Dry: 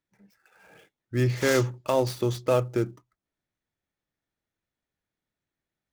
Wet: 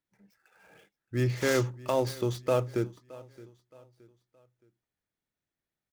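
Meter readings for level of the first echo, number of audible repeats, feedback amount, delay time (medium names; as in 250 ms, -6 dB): -20.5 dB, 2, 38%, 620 ms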